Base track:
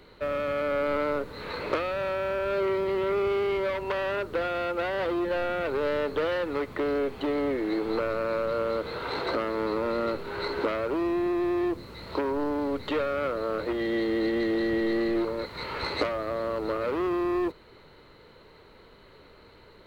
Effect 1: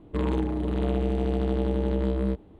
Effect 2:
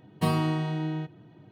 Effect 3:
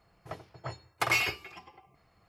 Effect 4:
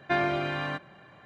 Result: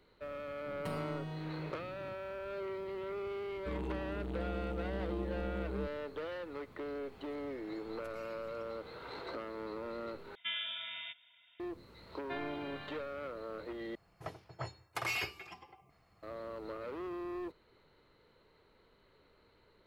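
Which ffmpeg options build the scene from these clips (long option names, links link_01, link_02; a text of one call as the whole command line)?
ffmpeg -i bed.wav -i cue0.wav -i cue1.wav -i cue2.wav -i cue3.wav -filter_complex "[3:a]asplit=2[link_01][link_02];[4:a]asplit=2[link_03][link_04];[0:a]volume=-14dB[link_05];[2:a]acompressor=threshold=-39dB:ratio=6:attack=3.2:release=140:knee=1:detection=peak[link_06];[link_01]acompressor=threshold=-58dB:ratio=6:attack=3.2:release=140:knee=1:detection=peak[link_07];[link_03]lowpass=frequency=3200:width_type=q:width=0.5098,lowpass=frequency=3200:width_type=q:width=0.6013,lowpass=frequency=3200:width_type=q:width=0.9,lowpass=frequency=3200:width_type=q:width=2.563,afreqshift=-3800[link_08];[link_04]lowpass=frequency=3600:width_type=q:width=1.9[link_09];[link_02]alimiter=limit=-23dB:level=0:latency=1:release=170[link_10];[link_05]asplit=3[link_11][link_12][link_13];[link_11]atrim=end=10.354[link_14];[link_08]atrim=end=1.25,asetpts=PTS-STARTPTS,volume=-12.5dB[link_15];[link_12]atrim=start=11.596:end=13.954[link_16];[link_10]atrim=end=2.28,asetpts=PTS-STARTPTS,volume=-2.5dB[link_17];[link_13]atrim=start=16.226[link_18];[link_06]atrim=end=1.51,asetpts=PTS-STARTPTS,volume=-0.5dB,afade=type=in:duration=0.004:curve=hsin,afade=type=out:start_time=1.506:duration=0.004:curve=hsin,adelay=640[link_19];[1:a]atrim=end=2.59,asetpts=PTS-STARTPTS,volume=-13.5dB,afade=type=in:duration=0.004:curve=hsin,afade=type=out:start_time=2.586:duration=0.004:curve=hsin,adelay=3520[link_20];[link_07]atrim=end=2.28,asetpts=PTS-STARTPTS,volume=-1dB,afade=type=in:duration=0.004:curve=hsin,afade=type=out:start_time=2.276:duration=0.004:curve=hsin,adelay=7040[link_21];[link_09]atrim=end=1.25,asetpts=PTS-STARTPTS,volume=-17.5dB,afade=type=in:duration=0.004:curve=hsin,afade=type=out:start_time=1.246:duration=0.004:curve=hsin,adelay=538020S[link_22];[link_14][link_15]acrossfade=duration=0.004:curve1=hsin:curve2=hsin[link_23];[link_23][link_16]acrossfade=duration=0.004:curve1=hsin:curve2=hsin[link_24];[link_24][link_17]acrossfade=duration=0.004:curve1=hsin:curve2=hsin[link_25];[link_25][link_18]acrossfade=duration=0.004:curve1=hsin:curve2=hsin[link_26];[link_26][link_19][link_20][link_21][link_22]amix=inputs=5:normalize=0" out.wav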